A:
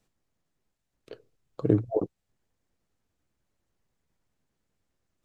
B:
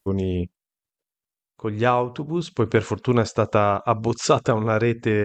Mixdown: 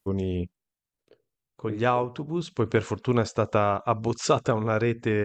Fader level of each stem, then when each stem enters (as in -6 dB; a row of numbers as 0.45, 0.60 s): -13.0, -4.0 dB; 0.00, 0.00 s